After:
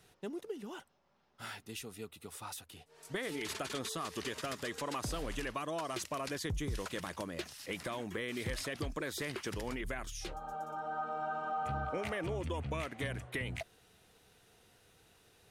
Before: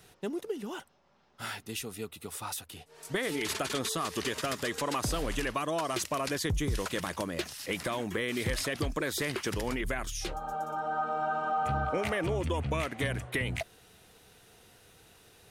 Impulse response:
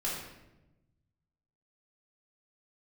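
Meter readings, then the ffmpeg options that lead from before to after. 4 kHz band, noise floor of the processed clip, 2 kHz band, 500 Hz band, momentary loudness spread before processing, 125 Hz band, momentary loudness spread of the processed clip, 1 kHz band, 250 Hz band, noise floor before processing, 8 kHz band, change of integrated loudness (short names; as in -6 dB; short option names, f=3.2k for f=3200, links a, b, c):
-7.0 dB, -68 dBFS, -6.5 dB, -6.5 dB, 8 LU, -6.5 dB, 8 LU, -6.5 dB, -6.5 dB, -61 dBFS, -7.5 dB, -6.5 dB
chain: -af "highshelf=f=11k:g=-4,volume=-6.5dB"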